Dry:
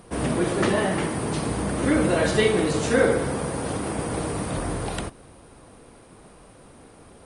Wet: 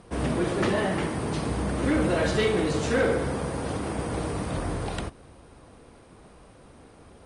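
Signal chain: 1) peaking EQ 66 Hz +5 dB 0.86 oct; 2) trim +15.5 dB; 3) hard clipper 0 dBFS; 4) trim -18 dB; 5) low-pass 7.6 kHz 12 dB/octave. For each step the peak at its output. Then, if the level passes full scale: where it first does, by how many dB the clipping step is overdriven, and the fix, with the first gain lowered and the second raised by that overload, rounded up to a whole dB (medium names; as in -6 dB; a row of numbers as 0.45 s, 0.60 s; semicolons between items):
-7.0 dBFS, +8.5 dBFS, 0.0 dBFS, -18.0 dBFS, -17.5 dBFS; step 2, 8.5 dB; step 2 +6.5 dB, step 4 -9 dB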